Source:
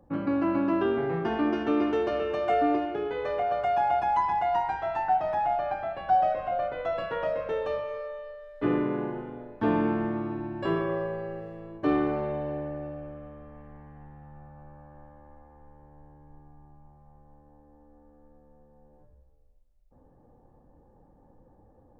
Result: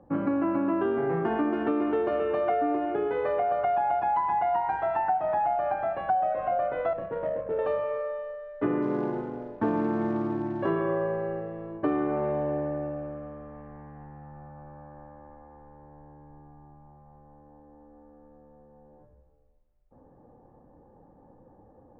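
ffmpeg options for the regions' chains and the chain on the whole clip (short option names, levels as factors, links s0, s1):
-filter_complex "[0:a]asettb=1/sr,asplit=3[s0][s1][s2];[s0]atrim=end=6.934[s3];[s1]atrim=start=6.93:end=7.59,asetpts=PTS-STARTPTS,afade=t=in:d=0.004:c=qsin,afade=t=out:st=0.656:d=0.004:c=qsin,equalizer=f=1500:w=0.49:g=-10,adynamicsmooth=sensitivity=3:basefreq=770[s4];[s2]atrim=start=7.586[s5];[s3][s4]acrossfade=d=0.004:c1=hsin:c2=qsin[s6];[s6][s5]acrossfade=d=0.004:c1=qsin:c2=hsin,asettb=1/sr,asplit=3[s7][s8][s9];[s7]atrim=end=8.824[s10];[s8]atrim=start=8.82:end=10.68,asetpts=PTS-STARTPTS,afade=t=in:d=0.004:c=qsin,afade=t=out:st=1.856:d=0.004:c=qsin,highshelf=f=3000:g=-9.5,acrusher=bits=5:mode=log:mix=0:aa=0.000001[s11];[s9]atrim=start=10.676[s12];[s10][s11]acrossfade=d=0.004:c1=hsin:c2=qsin[s13];[s13][s12]acrossfade=d=0.004:c1=qsin:c2=hsin,lowpass=1800,lowshelf=f=80:g=-11,acompressor=threshold=0.0398:ratio=6,volume=1.78"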